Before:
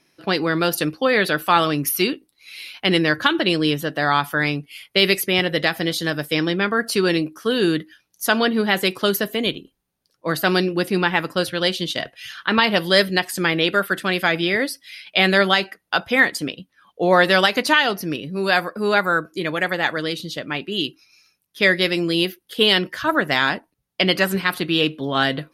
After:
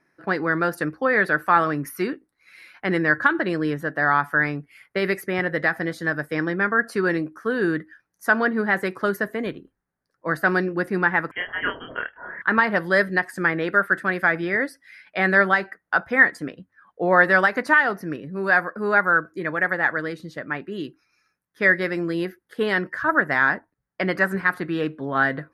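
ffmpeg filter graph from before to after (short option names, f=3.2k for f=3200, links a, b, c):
-filter_complex "[0:a]asettb=1/sr,asplit=3[a][b][c];[a]atrim=end=11.314[d];[b]atrim=start=11.31:end=12.42,asetpts=PTS-STARTPTS,afade=t=in:d=0.004:c=qsin,afade=t=out:st=1.106:d=0.004:c=qsin,asplit=2[e][f];[f]adelay=27,volume=-2.5dB[g];[e][g]amix=inputs=2:normalize=0,atrim=end_sample=48951,lowpass=f=2.9k:t=q:w=0.5098,lowpass=f=2.9k:t=q:w=0.6013,lowpass=f=2.9k:t=q:w=0.9,lowpass=f=2.9k:t=q:w=2.563,afreqshift=-3400[h];[c]atrim=start=12.416[i];[d][h]acrossfade=d=0.004:c1=hsin:c2=qsin[j];[j][i]acrossfade=d=0.004:c1=qsin:c2=hsin,lowpass=f=12k:w=0.5412,lowpass=f=12k:w=1.3066,highshelf=f=2.3k:t=q:w=3:g=-10,bandreject=f=50:t=h:w=6,bandreject=f=100:t=h:w=6,volume=-4dB"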